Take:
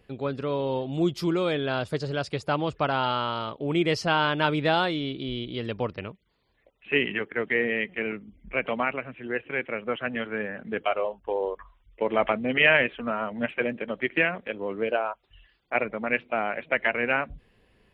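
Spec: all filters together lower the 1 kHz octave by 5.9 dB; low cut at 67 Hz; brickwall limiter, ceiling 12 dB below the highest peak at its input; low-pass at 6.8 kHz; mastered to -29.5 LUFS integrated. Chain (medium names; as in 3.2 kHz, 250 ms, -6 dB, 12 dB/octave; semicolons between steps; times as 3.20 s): high-pass 67 Hz; low-pass 6.8 kHz; peaking EQ 1 kHz -8.5 dB; trim +2 dB; peak limiter -17 dBFS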